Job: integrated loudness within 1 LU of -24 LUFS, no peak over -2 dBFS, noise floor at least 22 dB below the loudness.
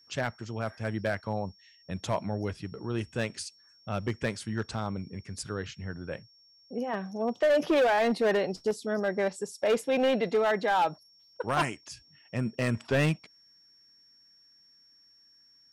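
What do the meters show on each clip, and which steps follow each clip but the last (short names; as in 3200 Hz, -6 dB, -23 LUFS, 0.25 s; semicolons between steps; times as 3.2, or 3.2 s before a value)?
clipped 1.6%; flat tops at -20.0 dBFS; steady tone 5500 Hz; tone level -58 dBFS; loudness -30.0 LUFS; peak -20.0 dBFS; loudness target -24.0 LUFS
-> clip repair -20 dBFS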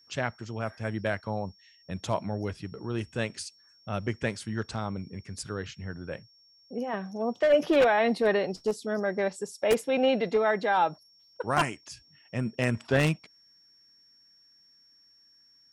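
clipped 0.0%; steady tone 5500 Hz; tone level -58 dBFS
-> notch 5500 Hz, Q 30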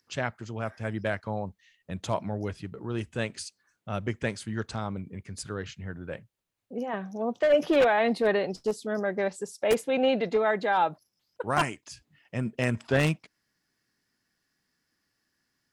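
steady tone none; loudness -29.0 LUFS; peak -10.5 dBFS; loudness target -24.0 LUFS
-> gain +5 dB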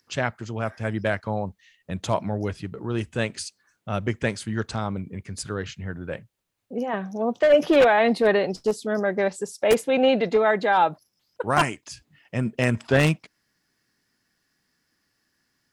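loudness -24.0 LUFS; peak -5.5 dBFS; noise floor -74 dBFS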